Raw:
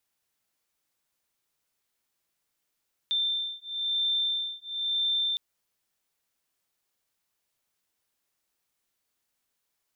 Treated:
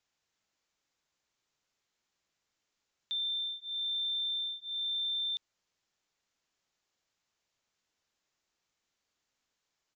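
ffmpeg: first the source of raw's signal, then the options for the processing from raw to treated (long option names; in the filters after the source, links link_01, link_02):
-f lavfi -i "aevalsrc='0.0335*(sin(2*PI*3570*t)+sin(2*PI*3571*t))':duration=2.26:sample_rate=44100"
-af "asoftclip=type=tanh:threshold=-32dB,aresample=16000,aresample=44100"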